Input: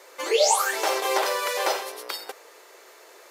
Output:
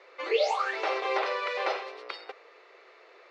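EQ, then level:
loudspeaker in its box 440–3,500 Hz, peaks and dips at 610 Hz −4 dB, 910 Hz −8 dB, 1,600 Hz −6 dB, 3,200 Hz −7 dB
0.0 dB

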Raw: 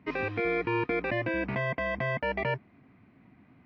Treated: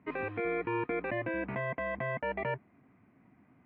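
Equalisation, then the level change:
high-frequency loss of the air 440 metres
spectral tilt +2 dB per octave
high-shelf EQ 3,200 Hz −11 dB
0.0 dB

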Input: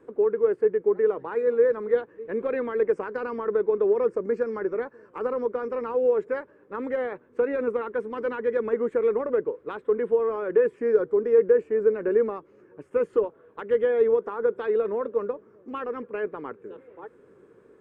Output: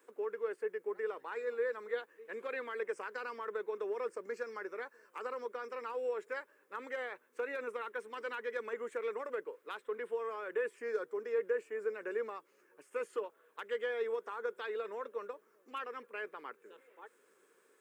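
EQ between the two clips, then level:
high-pass filter 180 Hz 12 dB per octave
first difference
+8.5 dB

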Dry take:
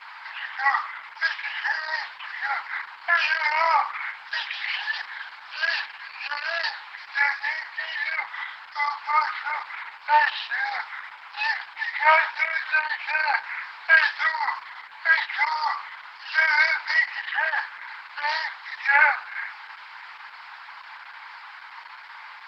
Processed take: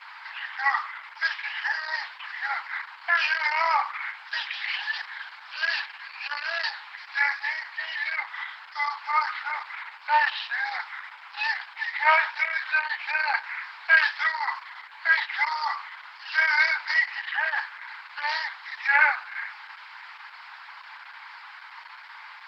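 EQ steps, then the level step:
high-pass filter 680 Hz 6 dB per octave
−1.0 dB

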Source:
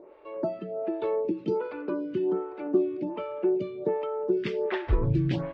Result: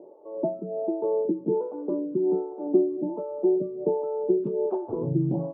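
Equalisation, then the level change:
elliptic band-pass filter 150–830 Hz, stop band 40 dB
+3.0 dB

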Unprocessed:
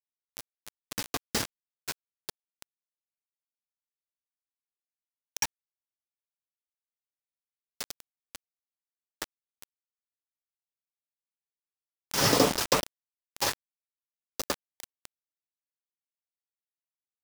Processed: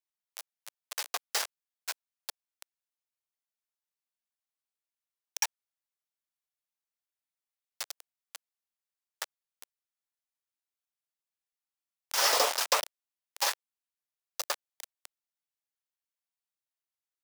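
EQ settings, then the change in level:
high-pass filter 580 Hz 24 dB per octave
0.0 dB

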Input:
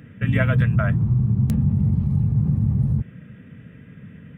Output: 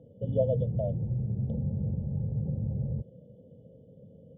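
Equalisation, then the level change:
formant resonators in series e
linear-phase brick-wall band-stop 930–2,900 Hz
parametric band 250 Hz −3 dB 0.77 octaves
+8.5 dB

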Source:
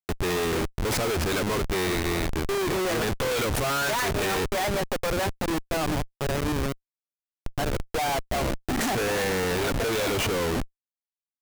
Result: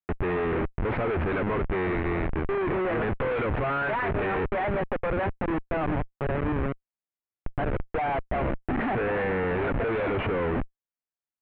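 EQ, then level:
inverse Chebyshev low-pass filter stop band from 5,800 Hz, stop band 50 dB
high-frequency loss of the air 100 metres
0.0 dB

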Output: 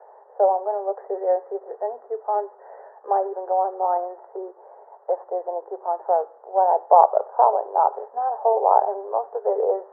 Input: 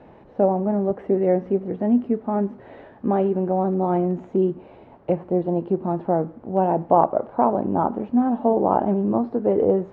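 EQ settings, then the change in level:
Chebyshev band-pass filter 410–1,900 Hz, order 5
high-frequency loss of the air 400 metres
parametric band 810 Hz +12 dB 1.2 octaves
−4.5 dB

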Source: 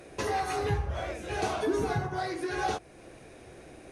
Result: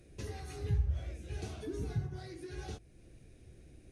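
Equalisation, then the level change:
guitar amp tone stack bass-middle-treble 10-0-1
+9.5 dB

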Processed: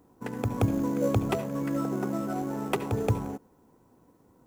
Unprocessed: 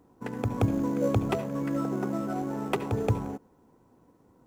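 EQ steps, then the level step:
high-shelf EQ 7,500 Hz +7 dB
0.0 dB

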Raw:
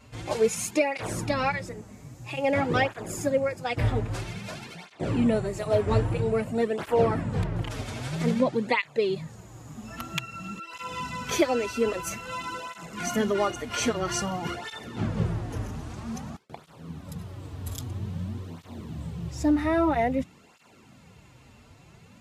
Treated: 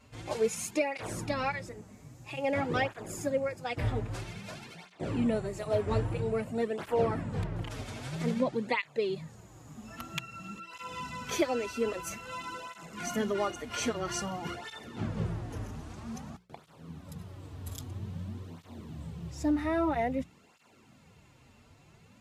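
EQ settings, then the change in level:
mains-hum notches 60/120/180 Hz
−5.5 dB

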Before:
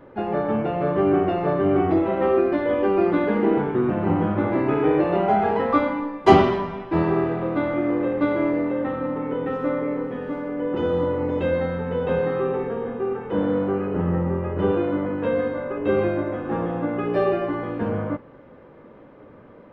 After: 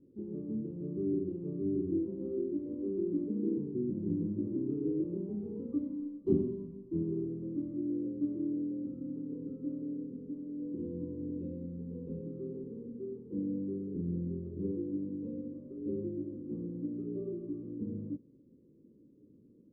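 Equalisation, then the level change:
inverse Chebyshev low-pass filter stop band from 670 Hz, stop band 40 dB
low-shelf EQ 84 Hz −10.5 dB
low-shelf EQ 200 Hz −5 dB
−6.5 dB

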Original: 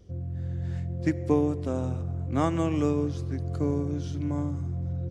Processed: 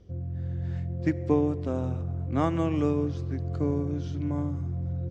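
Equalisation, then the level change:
high-frequency loss of the air 99 metres
0.0 dB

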